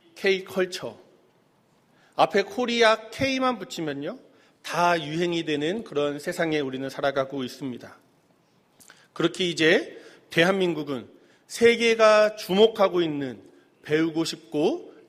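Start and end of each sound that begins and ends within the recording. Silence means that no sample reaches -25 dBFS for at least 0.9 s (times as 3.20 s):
2.19–7.71 s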